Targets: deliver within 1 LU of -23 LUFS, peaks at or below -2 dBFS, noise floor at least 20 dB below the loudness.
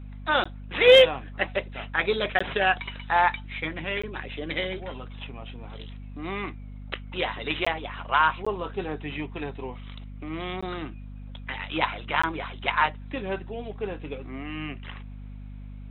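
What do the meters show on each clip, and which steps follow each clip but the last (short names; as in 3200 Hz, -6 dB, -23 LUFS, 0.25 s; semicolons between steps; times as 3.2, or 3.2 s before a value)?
dropouts 7; longest dropout 15 ms; hum 50 Hz; harmonics up to 250 Hz; hum level -37 dBFS; loudness -26.0 LUFS; peak -6.5 dBFS; loudness target -23.0 LUFS
-> interpolate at 0.44/2.39/4.02/7.65/8.45/10.61/12.22, 15 ms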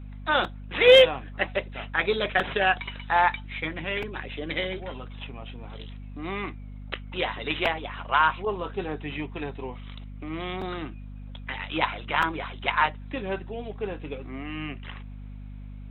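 dropouts 0; hum 50 Hz; harmonics up to 250 Hz; hum level -37 dBFS
-> de-hum 50 Hz, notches 5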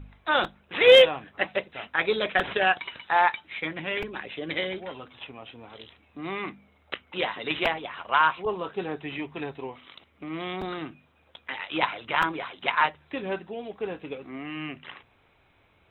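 hum none; loudness -26.0 LUFS; peak -6.5 dBFS; loudness target -23.0 LUFS
-> gain +3 dB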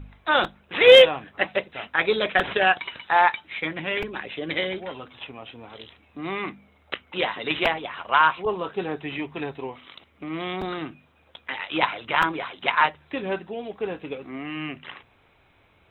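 loudness -23.0 LUFS; peak -3.5 dBFS; noise floor -60 dBFS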